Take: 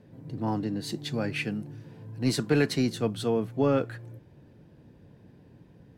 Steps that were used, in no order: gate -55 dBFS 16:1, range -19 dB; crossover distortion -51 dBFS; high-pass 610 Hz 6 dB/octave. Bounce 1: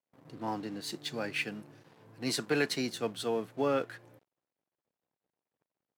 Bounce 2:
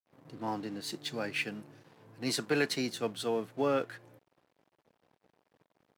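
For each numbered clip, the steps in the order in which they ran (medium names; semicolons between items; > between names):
crossover distortion > gate > high-pass; gate > crossover distortion > high-pass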